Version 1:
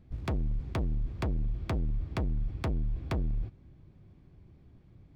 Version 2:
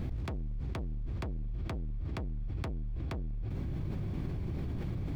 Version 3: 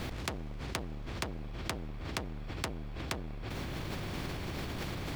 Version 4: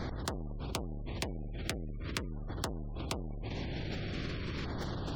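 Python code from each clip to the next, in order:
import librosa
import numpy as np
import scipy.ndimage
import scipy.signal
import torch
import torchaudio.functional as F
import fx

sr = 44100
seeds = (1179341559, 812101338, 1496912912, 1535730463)

y1 = fx.env_flatten(x, sr, amount_pct=100)
y1 = F.gain(torch.from_numpy(y1), -7.0).numpy()
y2 = fx.spectral_comp(y1, sr, ratio=2.0)
y2 = F.gain(torch.from_numpy(y2), 8.5).numpy()
y3 = fx.filter_lfo_notch(y2, sr, shape='saw_down', hz=0.43, low_hz=690.0, high_hz=2800.0, q=1.4)
y3 = fx.spec_gate(y3, sr, threshold_db=-30, keep='strong')
y3 = F.gain(torch.from_numpy(y3), 1.0).numpy()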